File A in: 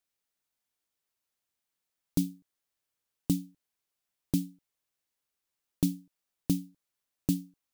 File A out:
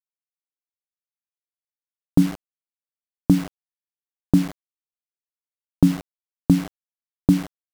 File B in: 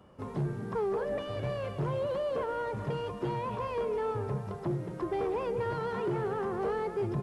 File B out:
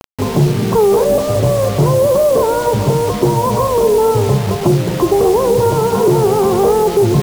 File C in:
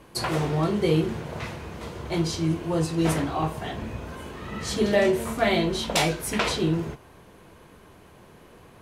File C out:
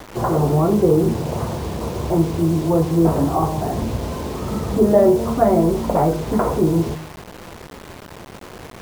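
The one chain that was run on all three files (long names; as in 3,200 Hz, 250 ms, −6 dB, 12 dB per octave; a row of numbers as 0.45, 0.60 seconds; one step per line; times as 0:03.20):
inverse Chebyshev low-pass filter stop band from 6,000 Hz, stop band 80 dB
hum removal 158.1 Hz, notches 6
in parallel at +0.5 dB: downward compressor 5 to 1, threshold −34 dBFS
on the sum: bit reduction 7 bits
tape wow and flutter 28 cents
normalise the peak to −1.5 dBFS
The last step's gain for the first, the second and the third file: +10.0, +16.5, +6.5 decibels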